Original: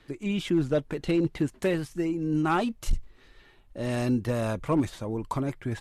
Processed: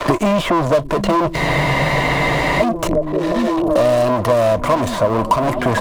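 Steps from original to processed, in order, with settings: in parallel at -10 dB: hard clip -28 dBFS, distortion -7 dB; on the sum: sample leveller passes 5; small resonant body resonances 640/1000 Hz, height 17 dB, ringing for 25 ms; on a send: delay with a stepping band-pass 0.742 s, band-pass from 190 Hz, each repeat 0.7 oct, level -5 dB; on the sum: spectral freeze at 1.38, 1.24 s; three-band squash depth 100%; gain -4 dB

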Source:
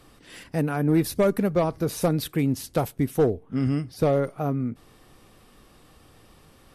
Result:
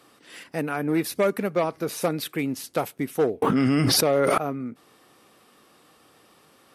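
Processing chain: dynamic EQ 2300 Hz, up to +5 dB, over -47 dBFS, Q 1.7; Bessel high-pass 280 Hz, order 2; bell 1300 Hz +2.5 dB 0.33 oct; 3.42–4.38 fast leveller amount 100%

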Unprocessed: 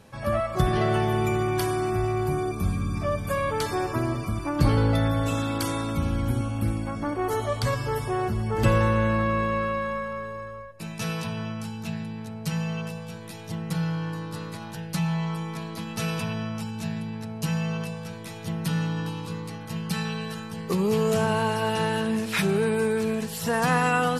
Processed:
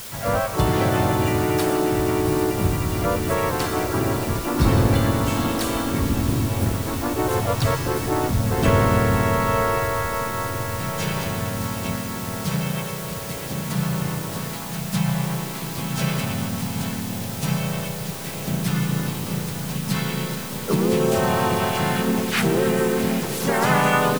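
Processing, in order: diffused feedback echo 0.764 s, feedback 74%, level -11 dB; harmoniser -4 st -9 dB, -3 st -2 dB, +3 st -3 dB; requantised 6-bit, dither triangular

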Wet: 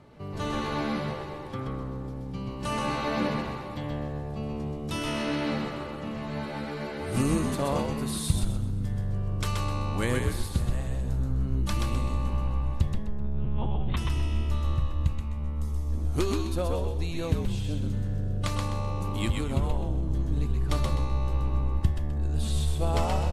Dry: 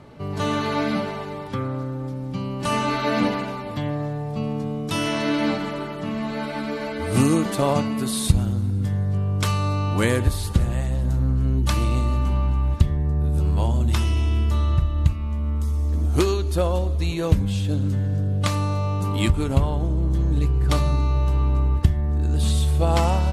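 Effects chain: 12.94–13.97 monotone LPC vocoder at 8 kHz 210 Hz; frequency-shifting echo 0.128 s, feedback 31%, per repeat -70 Hz, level -3.5 dB; gain -8 dB

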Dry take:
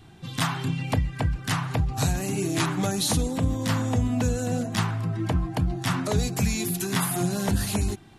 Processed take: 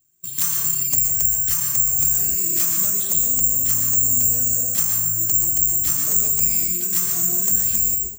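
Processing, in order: careless resampling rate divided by 6×, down filtered, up zero stuff; high shelf 3000 Hz +9.5 dB; plate-style reverb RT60 0.75 s, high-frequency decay 0.65×, pre-delay 0.105 s, DRR 3 dB; gate with hold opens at -7 dBFS; bell 860 Hz -12 dB 0.21 oct; in parallel at -5 dB: soft clip -1.5 dBFS, distortion -10 dB; on the sum: gain -14 dB

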